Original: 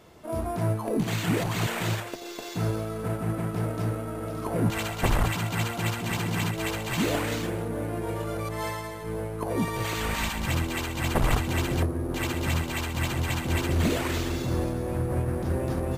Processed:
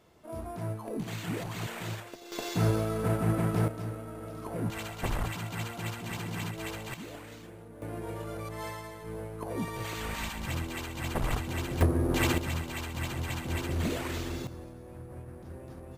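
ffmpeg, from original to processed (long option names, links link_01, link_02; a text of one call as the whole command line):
ffmpeg -i in.wav -af "asetnsamples=nb_out_samples=441:pad=0,asendcmd='2.32 volume volume 1.5dB;3.68 volume volume -8dB;6.94 volume volume -17.5dB;7.82 volume volume -7dB;11.81 volume volume 2.5dB;12.38 volume volume -6.5dB;14.47 volume volume -17dB',volume=-9dB" out.wav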